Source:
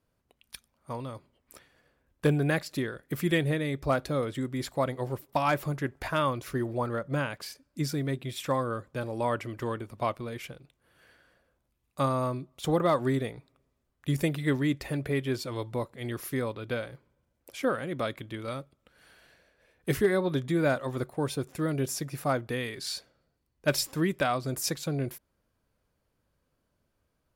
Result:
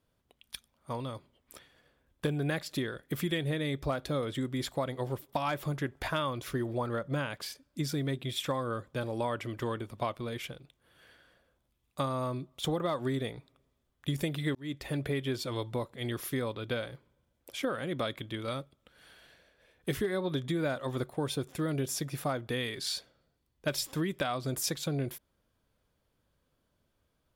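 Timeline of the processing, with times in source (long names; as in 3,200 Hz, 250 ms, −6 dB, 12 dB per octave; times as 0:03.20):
0:14.55–0:14.99: fade in
whole clip: parametric band 3,400 Hz +7 dB 0.27 octaves; downward compressor, threshold −28 dBFS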